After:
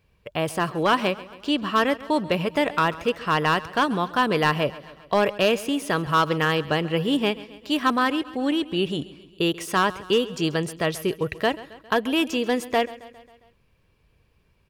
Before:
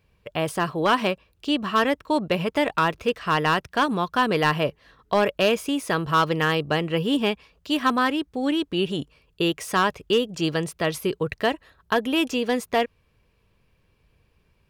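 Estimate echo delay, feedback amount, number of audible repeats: 135 ms, 58%, 4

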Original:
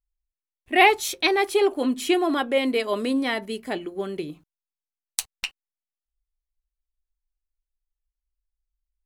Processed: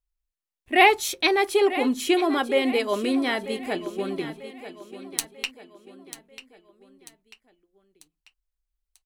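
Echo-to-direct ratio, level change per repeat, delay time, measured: -12.5 dB, -7.0 dB, 942 ms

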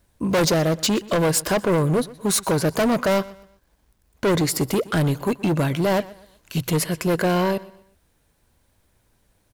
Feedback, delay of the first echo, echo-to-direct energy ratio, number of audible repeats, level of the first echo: 35%, 123 ms, -19.5 dB, 2, -20.0 dB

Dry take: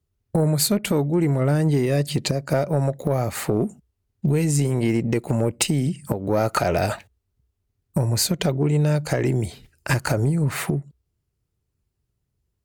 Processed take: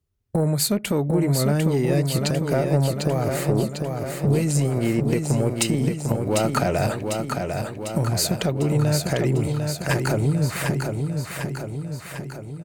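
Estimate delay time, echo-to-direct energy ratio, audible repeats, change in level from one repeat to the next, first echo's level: 749 ms, -3.0 dB, 7, -4.5 dB, -5.0 dB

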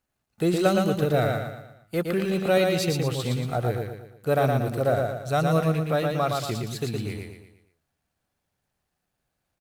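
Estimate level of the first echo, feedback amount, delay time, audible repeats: -3.5 dB, 43%, 116 ms, 5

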